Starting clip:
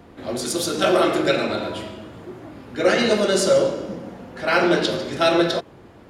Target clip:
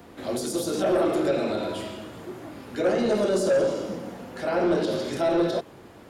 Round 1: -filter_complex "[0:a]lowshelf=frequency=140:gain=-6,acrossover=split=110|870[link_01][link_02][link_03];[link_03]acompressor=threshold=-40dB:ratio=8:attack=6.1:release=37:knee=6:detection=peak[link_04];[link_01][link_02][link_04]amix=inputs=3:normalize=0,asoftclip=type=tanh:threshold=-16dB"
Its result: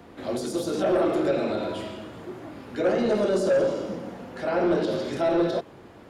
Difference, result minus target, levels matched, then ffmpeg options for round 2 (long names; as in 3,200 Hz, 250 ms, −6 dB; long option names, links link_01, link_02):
8,000 Hz band −5.5 dB
-filter_complex "[0:a]lowshelf=frequency=140:gain=-6,acrossover=split=110|870[link_01][link_02][link_03];[link_03]acompressor=threshold=-40dB:ratio=8:attack=6.1:release=37:knee=6:detection=peak,highshelf=frequency=6700:gain=10[link_04];[link_01][link_02][link_04]amix=inputs=3:normalize=0,asoftclip=type=tanh:threshold=-16dB"